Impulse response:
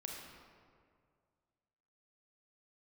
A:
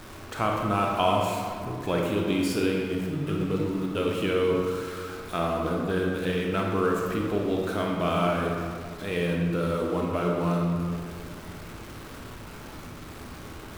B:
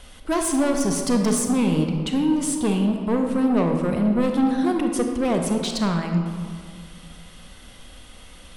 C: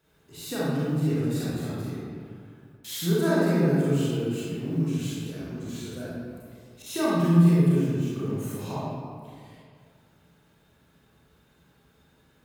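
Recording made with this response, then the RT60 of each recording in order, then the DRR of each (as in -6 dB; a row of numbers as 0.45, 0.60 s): A; 2.1, 2.1, 2.1 s; -1.0, 3.5, -9.0 dB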